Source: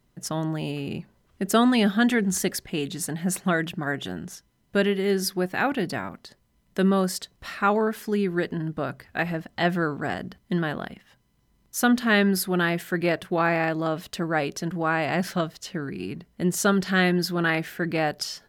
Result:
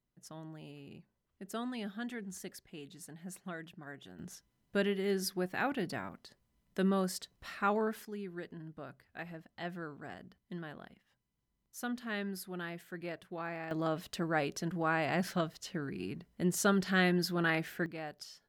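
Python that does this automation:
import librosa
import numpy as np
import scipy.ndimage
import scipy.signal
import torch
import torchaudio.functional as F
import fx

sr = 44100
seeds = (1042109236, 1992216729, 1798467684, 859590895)

y = fx.gain(x, sr, db=fx.steps((0.0, -20.0), (4.19, -9.5), (8.05, -18.0), (13.71, -7.5), (17.86, -18.0)))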